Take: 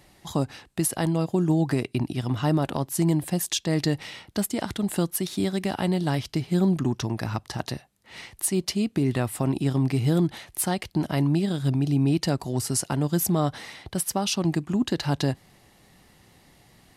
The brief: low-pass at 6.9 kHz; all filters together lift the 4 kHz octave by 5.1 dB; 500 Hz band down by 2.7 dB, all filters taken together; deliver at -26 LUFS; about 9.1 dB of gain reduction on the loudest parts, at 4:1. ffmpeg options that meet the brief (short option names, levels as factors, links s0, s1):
-af "lowpass=6900,equalizer=f=500:t=o:g=-4,equalizer=f=4000:t=o:g=7,acompressor=threshold=0.0316:ratio=4,volume=2.37"